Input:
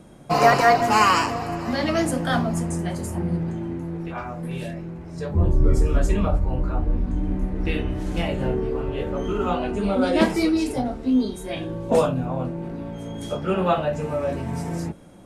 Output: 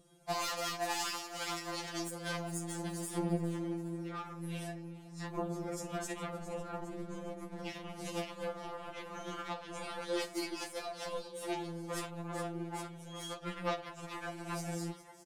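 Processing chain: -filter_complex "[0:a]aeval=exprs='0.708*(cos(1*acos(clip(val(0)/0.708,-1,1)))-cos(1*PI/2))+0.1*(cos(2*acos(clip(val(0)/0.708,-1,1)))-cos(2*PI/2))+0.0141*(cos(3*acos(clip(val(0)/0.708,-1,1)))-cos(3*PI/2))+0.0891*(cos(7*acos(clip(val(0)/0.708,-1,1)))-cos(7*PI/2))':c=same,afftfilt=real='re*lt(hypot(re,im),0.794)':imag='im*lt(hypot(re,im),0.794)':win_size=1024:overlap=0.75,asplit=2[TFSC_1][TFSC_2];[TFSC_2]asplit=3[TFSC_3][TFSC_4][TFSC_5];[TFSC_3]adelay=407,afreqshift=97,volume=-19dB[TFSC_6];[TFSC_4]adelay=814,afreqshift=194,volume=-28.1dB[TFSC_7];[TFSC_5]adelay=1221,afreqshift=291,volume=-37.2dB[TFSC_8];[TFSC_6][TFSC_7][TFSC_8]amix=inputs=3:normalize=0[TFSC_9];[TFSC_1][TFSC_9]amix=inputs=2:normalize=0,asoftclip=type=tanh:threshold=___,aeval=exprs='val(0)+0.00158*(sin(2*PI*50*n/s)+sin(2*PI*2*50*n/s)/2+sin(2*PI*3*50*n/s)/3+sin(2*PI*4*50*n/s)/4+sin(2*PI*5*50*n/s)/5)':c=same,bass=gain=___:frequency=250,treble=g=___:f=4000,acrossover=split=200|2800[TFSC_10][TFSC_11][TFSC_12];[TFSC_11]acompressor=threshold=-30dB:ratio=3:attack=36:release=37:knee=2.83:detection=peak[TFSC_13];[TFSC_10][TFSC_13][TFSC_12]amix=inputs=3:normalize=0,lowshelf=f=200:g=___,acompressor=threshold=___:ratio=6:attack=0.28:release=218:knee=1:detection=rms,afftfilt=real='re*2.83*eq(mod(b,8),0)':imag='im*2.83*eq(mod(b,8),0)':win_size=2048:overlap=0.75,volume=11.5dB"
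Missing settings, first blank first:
-10dB, -7, 8, -2.5, -40dB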